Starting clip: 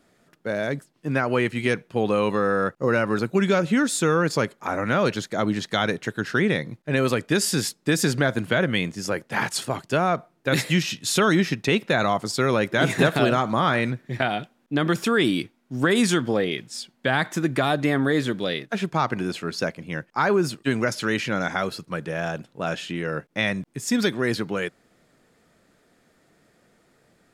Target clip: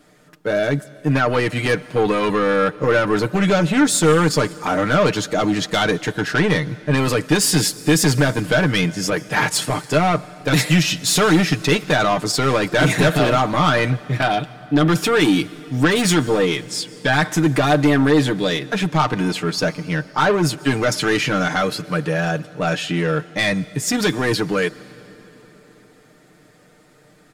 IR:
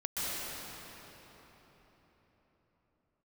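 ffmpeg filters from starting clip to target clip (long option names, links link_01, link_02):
-filter_complex "[0:a]asoftclip=type=tanh:threshold=-19.5dB,aecho=1:1:6.6:0.65,asplit=2[link_01][link_02];[1:a]atrim=start_sample=2205,highshelf=frequency=4500:gain=9[link_03];[link_02][link_03]afir=irnorm=-1:irlink=0,volume=-27.5dB[link_04];[link_01][link_04]amix=inputs=2:normalize=0,volume=7dB"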